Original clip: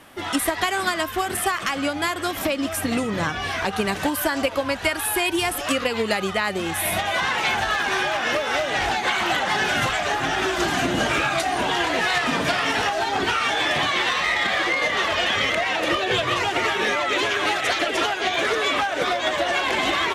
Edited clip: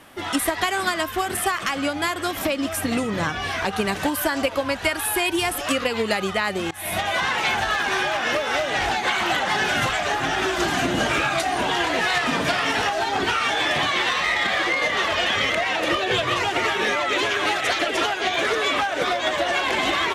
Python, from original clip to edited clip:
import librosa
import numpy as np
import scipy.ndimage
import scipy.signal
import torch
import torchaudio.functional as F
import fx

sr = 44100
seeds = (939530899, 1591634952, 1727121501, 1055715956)

y = fx.edit(x, sr, fx.fade_in_from(start_s=6.71, length_s=0.29, floor_db=-23.5), tone=tone)